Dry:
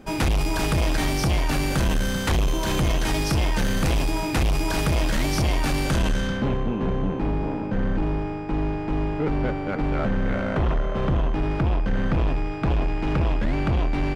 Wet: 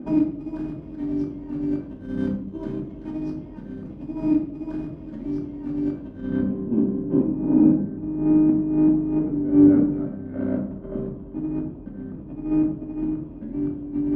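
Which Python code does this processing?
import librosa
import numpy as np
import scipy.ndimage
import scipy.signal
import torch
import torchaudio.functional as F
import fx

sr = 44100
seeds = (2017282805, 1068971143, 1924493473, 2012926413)

y = fx.over_compress(x, sr, threshold_db=-28.0, ratio=-0.5)
y = fx.bandpass_q(y, sr, hz=250.0, q=1.9)
y = fx.room_shoebox(y, sr, seeds[0], volume_m3=790.0, walls='furnished', distance_m=2.6)
y = y * 10.0 ** (4.0 / 20.0)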